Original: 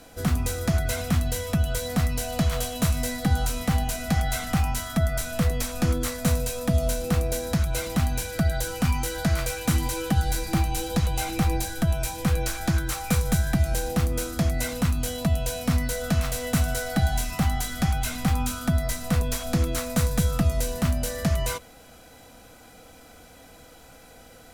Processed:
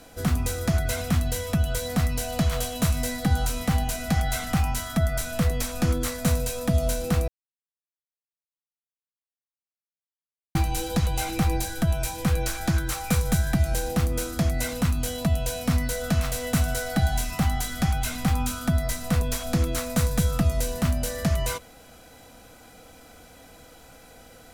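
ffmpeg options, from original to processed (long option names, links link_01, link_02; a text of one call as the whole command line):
ffmpeg -i in.wav -filter_complex "[0:a]asplit=3[link_01][link_02][link_03];[link_01]atrim=end=7.28,asetpts=PTS-STARTPTS,afade=type=out:start_time=7.276:duration=0.004:curve=hsin[link_04];[link_02]atrim=start=7.28:end=10.55,asetpts=PTS-STARTPTS,volume=0[link_05];[link_03]atrim=start=10.55,asetpts=PTS-STARTPTS,afade=type=in:duration=0.004:curve=hsin[link_06];[link_04][link_05][link_06]concat=n=3:v=0:a=1" out.wav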